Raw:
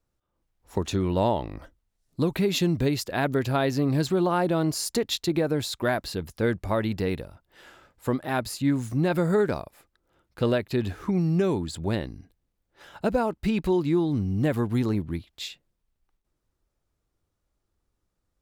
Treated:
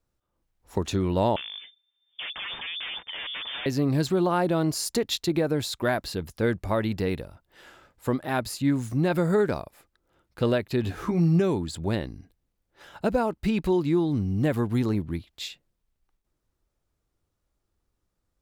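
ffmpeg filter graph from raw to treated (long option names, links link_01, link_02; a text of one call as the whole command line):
ffmpeg -i in.wav -filter_complex "[0:a]asettb=1/sr,asplit=3[link_01][link_02][link_03];[link_01]atrim=end=1.364[link_04];[link_02]atrim=start=1.36:end=3.66,asetpts=PTS-STARTPTS,afade=type=in:duration=0.004:curve=qsin,afade=type=out:start_time=2.296:duration=0.004:curve=qsin,aeval=exprs='0.0335*(abs(mod(val(0)/0.0335+3,4)-2)-1)':channel_layout=same,lowpass=frequency=3100:width_type=q:width=0.5098,lowpass=frequency=3100:width_type=q:width=0.6013,lowpass=frequency=3100:width_type=q:width=0.9,lowpass=frequency=3100:width_type=q:width=2.563,afreqshift=-3600[link_05];[link_03]atrim=start=3.656[link_06];[link_04][link_05]acrossfade=duration=0.004:curve1=hsin:curve2=qsin[link_07];[link_07][link_06]acrossfade=duration=0.004:curve1=qsin:curve2=hsin,asettb=1/sr,asplit=3[link_08][link_09][link_10];[link_08]atrim=end=10.844[link_11];[link_09]atrim=start=10.84:end=11.4,asetpts=PTS-STARTPTS,afade=type=in:duration=0.004:curve=qsin,afade=type=out:start_time=0.556:duration=0.004:curve=qsin,acompressor=mode=upward:threshold=-29dB:ratio=2.5:attack=3.2:release=140:knee=2.83:detection=peak,asplit=2[link_12][link_13];[link_13]adelay=18,volume=-5dB[link_14];[link_12][link_14]amix=inputs=2:normalize=0,atrim=end_sample=24696[link_15];[link_10]atrim=start=11.396[link_16];[link_11][link_15]acrossfade=duration=0.004:curve1=hsin:curve2=qsin[link_17];[link_17][link_16]acrossfade=duration=0.004:curve1=qsin:curve2=hsin" out.wav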